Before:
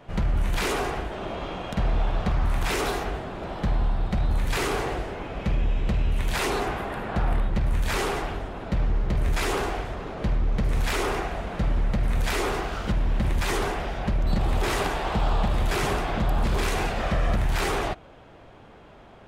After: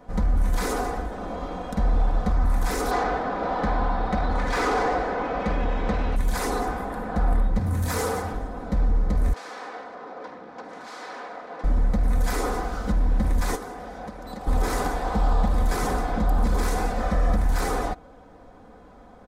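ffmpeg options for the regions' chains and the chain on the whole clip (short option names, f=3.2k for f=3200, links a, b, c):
-filter_complex "[0:a]asettb=1/sr,asplit=3[a][b][c];[a]atrim=end=2.914[d];[b]atrim=start=2.91:end=6.16,asetpts=PTS-STARTPTS,afade=t=in:d=0.004:c=qsin,afade=t=out:st=3.246:d=0.004:c=qsin,lowpass=4.9k,asplit=2[e][f];[f]highpass=f=720:p=1,volume=19dB,asoftclip=type=tanh:threshold=-15dB[g];[e][g]amix=inputs=2:normalize=0,lowpass=f=3.4k:p=1,volume=-6dB[h];[c]atrim=start=6.156[i];[d][h]acrossfade=d=0.004:c1=hsin:c2=qsin[j];[j][i]acrossfade=d=0.004:c1=qsin:c2=hsin,asettb=1/sr,asplit=3[k][l][m];[k]atrim=end=7.594[n];[l]atrim=start=7.59:end=8.33,asetpts=PTS-STARTPTS,afade=t=in:d=0.004:c=qsin,afade=t=out:st=0.736:d=0.004:c=qsin,highshelf=f=7.4k:g=6.5,afreqshift=49[o];[m]atrim=start=8.326[p];[n][o]acrossfade=d=0.004:c1=hsin:c2=qsin[q];[q][p]acrossfade=d=0.004:c1=qsin:c2=hsin,asettb=1/sr,asplit=3[r][s][t];[r]atrim=end=9.334[u];[s]atrim=start=9.33:end=11.64,asetpts=PTS-STARTPTS,afade=t=in:d=0.004:c=qsin,afade=t=out:st=2.306:d=0.004:c=qsin,afreqshift=-14,aeval=exprs='0.0355*(abs(mod(val(0)/0.0355+3,4)-2)-1)':c=same,highpass=430,lowpass=3.6k[v];[t]atrim=start=11.636[w];[u][v]acrossfade=d=0.004:c1=hsin:c2=qsin[x];[x][w]acrossfade=d=0.004:c1=qsin:c2=hsin,asettb=1/sr,asplit=3[y][z][aa];[y]atrim=end=13.554[ab];[z]atrim=start=13.55:end=14.47,asetpts=PTS-STARTPTS,afade=t=in:d=0.004:c=qsin,afade=t=out:st=0.916:d=0.004:c=qsin,highpass=f=210:p=1,acrossover=split=300|610[ac][ad][ae];[ac]acompressor=threshold=-42dB:ratio=4[af];[ad]acompressor=threshold=-42dB:ratio=4[ag];[ae]acompressor=threshold=-39dB:ratio=4[ah];[af][ag][ah]amix=inputs=3:normalize=0[ai];[aa]atrim=start=14.466[aj];[ab][ai]acrossfade=d=0.004:c1=hsin:c2=qsin[ak];[ak][aj]acrossfade=d=0.004:c1=qsin:c2=hsin,equalizer=f=2.8k:w=1.6:g=-14.5,aecho=1:1:4:0.61"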